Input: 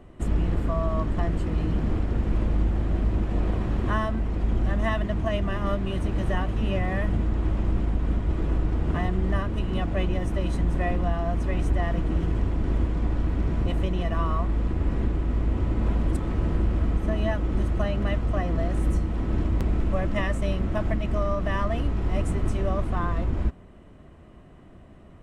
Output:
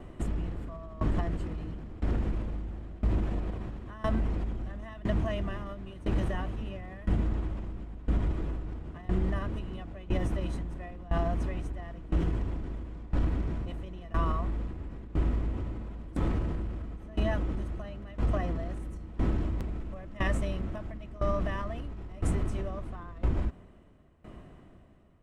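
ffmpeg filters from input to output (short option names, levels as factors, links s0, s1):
-af "alimiter=limit=0.0841:level=0:latency=1:release=67,aeval=exprs='val(0)*pow(10,-20*if(lt(mod(0.99*n/s,1),2*abs(0.99)/1000),1-mod(0.99*n/s,1)/(2*abs(0.99)/1000),(mod(0.99*n/s,1)-2*abs(0.99)/1000)/(1-2*abs(0.99)/1000))/20)':c=same,volume=1.58"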